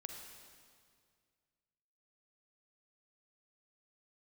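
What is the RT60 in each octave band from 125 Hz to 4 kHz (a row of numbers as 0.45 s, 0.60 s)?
2.5 s, 2.2 s, 2.1 s, 2.0 s, 1.9 s, 1.8 s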